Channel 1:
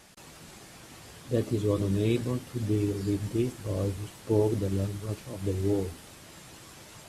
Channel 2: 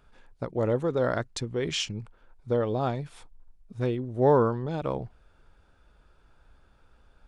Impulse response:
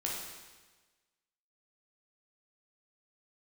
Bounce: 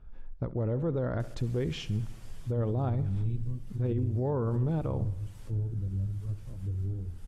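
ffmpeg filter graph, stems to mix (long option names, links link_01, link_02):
-filter_complex "[0:a]bandreject=frequency=4100:width=26,acrossover=split=150[link_01][link_02];[link_02]acompressor=threshold=-60dB:ratio=4[link_03];[link_01][link_03]amix=inputs=2:normalize=0,adelay=1200,volume=1.5dB,asplit=2[link_04][link_05];[link_05]volume=-15.5dB[link_06];[1:a]aemphasis=mode=reproduction:type=riaa,volume=-5.5dB,asplit=2[link_07][link_08];[link_08]volume=-19.5dB[link_09];[link_06][link_09]amix=inputs=2:normalize=0,aecho=0:1:68|136|204|272|340|408|476|544|612:1|0.58|0.336|0.195|0.113|0.0656|0.0381|0.0221|0.0128[link_10];[link_04][link_07][link_10]amix=inputs=3:normalize=0,alimiter=limit=-22dB:level=0:latency=1:release=33"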